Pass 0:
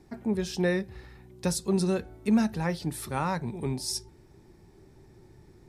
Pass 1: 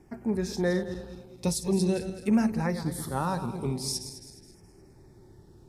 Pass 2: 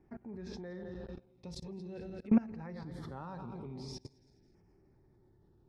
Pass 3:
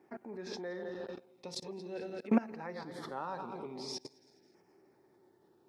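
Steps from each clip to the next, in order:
backward echo that repeats 105 ms, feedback 63%, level -10 dB; LFO notch saw down 0.44 Hz 990–4100 Hz
distance through air 230 m; level held to a coarse grid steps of 22 dB
high-pass 380 Hz 12 dB/octave; trim +7.5 dB

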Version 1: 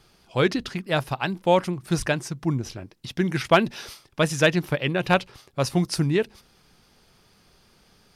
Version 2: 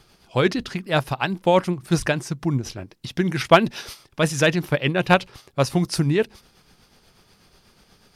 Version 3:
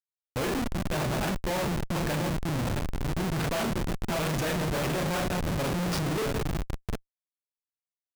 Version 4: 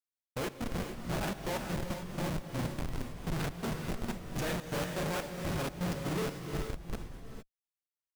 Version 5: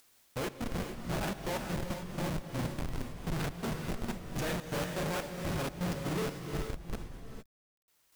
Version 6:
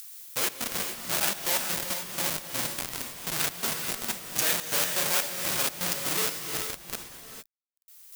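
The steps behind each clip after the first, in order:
tremolo 8.2 Hz, depth 44%; trim +4.5 dB
backward echo that repeats 349 ms, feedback 65%, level -11 dB; Schroeder reverb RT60 0.3 s, combs from 26 ms, DRR 2 dB; Schmitt trigger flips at -23.5 dBFS; trim -7.5 dB
trance gate "xx.x.xx.." 124 bpm -24 dB; gated-style reverb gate 480 ms rising, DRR 4.5 dB; trim -5.5 dB
upward compressor, threshold -42 dBFS; word length cut 12-bit, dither none
tilt EQ +4.5 dB/octave; trim +4.5 dB

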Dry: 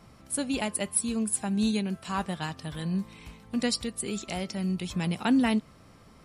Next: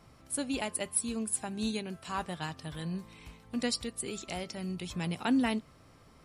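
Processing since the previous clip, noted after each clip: peaking EQ 200 Hz -9.5 dB 0.2 oct; trim -3.5 dB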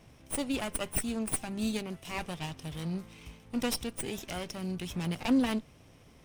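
comb filter that takes the minimum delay 0.33 ms; trim +2 dB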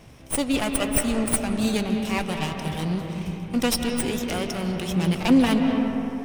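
reverberation RT60 3.2 s, pre-delay 123 ms, DRR 3 dB; trim +8.5 dB

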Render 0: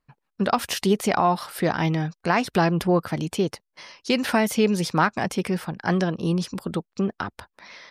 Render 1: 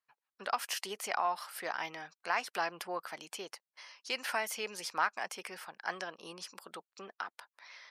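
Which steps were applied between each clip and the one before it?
high-pass 850 Hz 12 dB/octave; dynamic bell 3.7 kHz, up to -7 dB, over -54 dBFS, Q 6.3; trim -8 dB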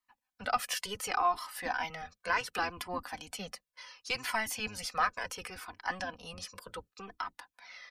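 octave divider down 1 oct, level +2 dB; comb 4 ms, depth 48%; Shepard-style flanger falling 0.69 Hz; trim +5.5 dB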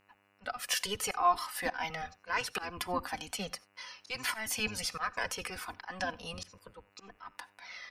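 slow attack 184 ms; mains buzz 100 Hz, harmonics 29, -74 dBFS -1 dB/octave; on a send at -21 dB: reverberation, pre-delay 3 ms; on the sum: trim +3.5 dB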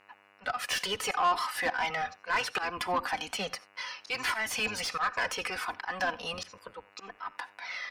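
in parallel at -7 dB: saturation -27.5 dBFS, distortion -11 dB; on the sum: overdrive pedal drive 17 dB, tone 2.7 kHz, clips at -15.5 dBFS; trim -3.5 dB

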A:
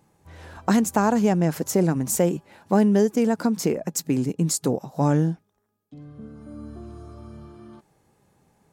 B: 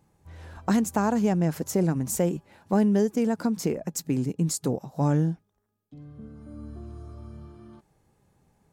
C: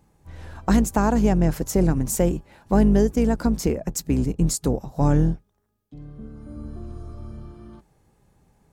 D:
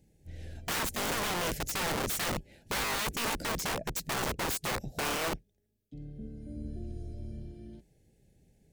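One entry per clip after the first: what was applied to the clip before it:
bass shelf 100 Hz +10.5 dB; trim -5 dB
octave divider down 2 oct, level -3 dB; trim +3.5 dB
Butterworth band-stop 1.1 kHz, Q 0.84; integer overflow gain 23 dB; trim -4 dB

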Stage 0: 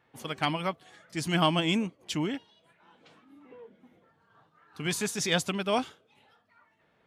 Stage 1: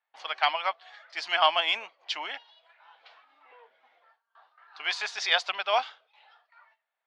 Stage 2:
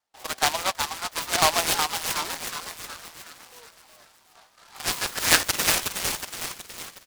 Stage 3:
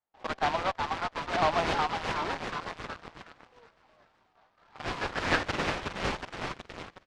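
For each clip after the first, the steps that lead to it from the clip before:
gate with hold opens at -54 dBFS; elliptic band-pass 700–4700 Hz, stop band 80 dB; trim +5.5 dB
on a send: frequency-shifting echo 368 ms, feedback 53%, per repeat +130 Hz, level -5.5 dB; on the sum: high-pass sweep 250 Hz -> 2.5 kHz, 4.05–5.60 s; delay time shaken by noise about 2.9 kHz, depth 0.12 ms; trim +1.5 dB
in parallel at -9.5 dB: fuzz box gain 34 dB, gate -40 dBFS; on the sum: tape spacing loss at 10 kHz 36 dB; random flutter of the level, depth 60%

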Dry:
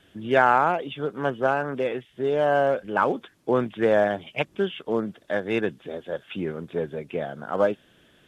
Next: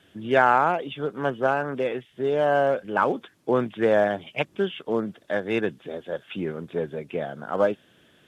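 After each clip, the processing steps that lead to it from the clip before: high-pass 71 Hz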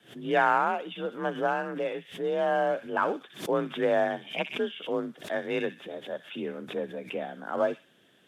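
feedback echo behind a high-pass 63 ms, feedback 31%, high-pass 2.3 kHz, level -5 dB; frequency shift +40 Hz; swell ahead of each attack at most 150 dB/s; trim -5 dB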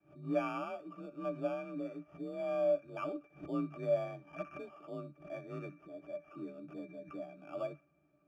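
sample-and-hold 11×; pitch-class resonator D, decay 0.11 s

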